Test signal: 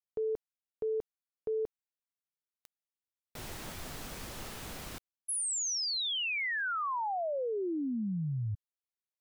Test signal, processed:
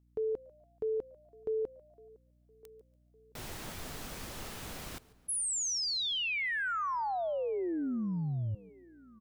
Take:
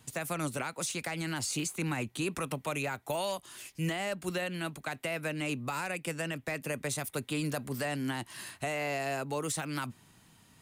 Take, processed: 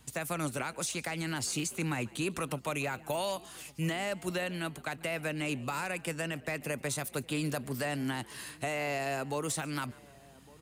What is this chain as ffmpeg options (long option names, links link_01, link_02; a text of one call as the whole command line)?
ffmpeg -i in.wav -filter_complex "[0:a]asplit=2[link_01][link_02];[link_02]adelay=1159,lowpass=frequency=1200:poles=1,volume=-23dB,asplit=2[link_03][link_04];[link_04]adelay=1159,lowpass=frequency=1200:poles=1,volume=0.42,asplit=2[link_05][link_06];[link_06]adelay=1159,lowpass=frequency=1200:poles=1,volume=0.42[link_07];[link_03][link_05][link_07]amix=inputs=3:normalize=0[link_08];[link_01][link_08]amix=inputs=2:normalize=0,aeval=exprs='val(0)+0.000501*(sin(2*PI*60*n/s)+sin(2*PI*2*60*n/s)/2+sin(2*PI*3*60*n/s)/3+sin(2*PI*4*60*n/s)/4+sin(2*PI*5*60*n/s)/5)':channel_layout=same,asplit=2[link_09][link_10];[link_10]asplit=3[link_11][link_12][link_13];[link_11]adelay=143,afreqshift=83,volume=-22.5dB[link_14];[link_12]adelay=286,afreqshift=166,volume=-30.7dB[link_15];[link_13]adelay=429,afreqshift=249,volume=-38.9dB[link_16];[link_14][link_15][link_16]amix=inputs=3:normalize=0[link_17];[link_09][link_17]amix=inputs=2:normalize=0" out.wav